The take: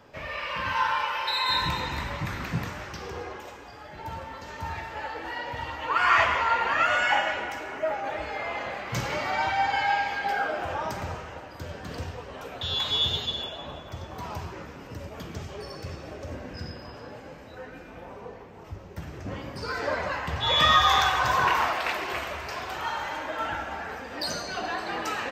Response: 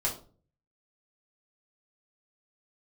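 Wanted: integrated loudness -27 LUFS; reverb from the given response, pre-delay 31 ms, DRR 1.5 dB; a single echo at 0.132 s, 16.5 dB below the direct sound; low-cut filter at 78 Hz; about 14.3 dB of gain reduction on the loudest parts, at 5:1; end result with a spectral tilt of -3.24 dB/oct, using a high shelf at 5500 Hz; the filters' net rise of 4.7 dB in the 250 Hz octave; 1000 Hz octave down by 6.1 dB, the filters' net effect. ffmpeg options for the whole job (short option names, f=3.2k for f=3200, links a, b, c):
-filter_complex "[0:a]highpass=78,equalizer=f=250:t=o:g=7,equalizer=f=1k:t=o:g=-8,highshelf=f=5.5k:g=-7,acompressor=threshold=-36dB:ratio=5,aecho=1:1:132:0.15,asplit=2[a][b];[1:a]atrim=start_sample=2205,adelay=31[c];[b][c]afir=irnorm=-1:irlink=0,volume=-7.5dB[d];[a][d]amix=inputs=2:normalize=0,volume=9.5dB"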